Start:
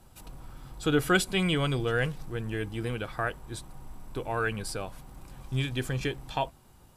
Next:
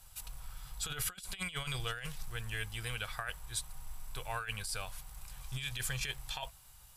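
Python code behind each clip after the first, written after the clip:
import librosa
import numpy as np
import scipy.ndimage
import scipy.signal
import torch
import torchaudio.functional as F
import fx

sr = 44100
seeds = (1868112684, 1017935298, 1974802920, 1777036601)

y = fx.tone_stack(x, sr, knobs='10-0-10')
y = fx.over_compress(y, sr, threshold_db=-40.0, ratio=-0.5)
y = fx.peak_eq(y, sr, hz=13000.0, db=3.5, octaves=1.3)
y = y * librosa.db_to_amplitude(2.5)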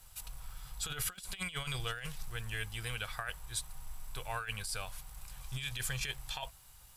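y = fx.dmg_crackle(x, sr, seeds[0], per_s=490.0, level_db=-57.0)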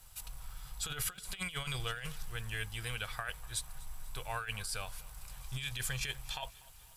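y = fx.echo_feedback(x, sr, ms=245, feedback_pct=55, wet_db=-22)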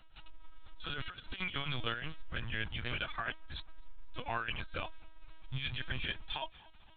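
y = fx.lpc_vocoder(x, sr, seeds[1], excitation='pitch_kept', order=16)
y = y * librosa.db_to_amplitude(2.0)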